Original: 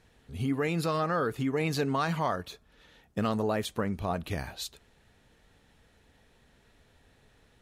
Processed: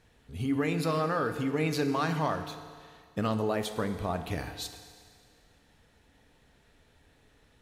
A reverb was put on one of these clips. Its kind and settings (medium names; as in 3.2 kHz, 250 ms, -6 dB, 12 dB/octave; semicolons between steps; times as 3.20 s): FDN reverb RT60 2 s, low-frequency decay 0.8×, high-frequency decay 1×, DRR 7.5 dB; trim -1 dB